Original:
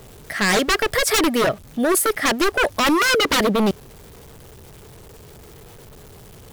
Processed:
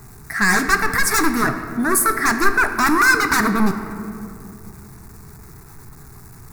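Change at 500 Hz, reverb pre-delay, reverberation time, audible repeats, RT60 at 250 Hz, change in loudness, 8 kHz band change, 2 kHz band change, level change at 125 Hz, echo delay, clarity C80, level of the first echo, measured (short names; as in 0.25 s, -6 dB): -6.5 dB, 5 ms, 2.7 s, none, 3.2 s, +1.5 dB, +1.5 dB, +5.0 dB, +2.5 dB, none, 9.5 dB, none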